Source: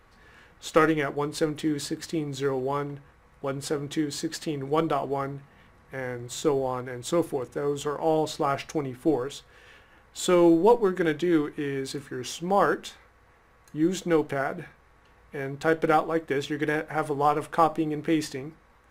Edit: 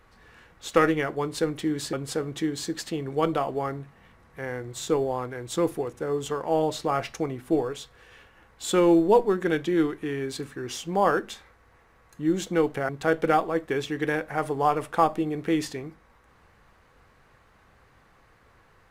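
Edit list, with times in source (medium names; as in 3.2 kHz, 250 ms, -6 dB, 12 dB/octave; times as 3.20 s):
1.93–3.48 s: delete
14.44–15.49 s: delete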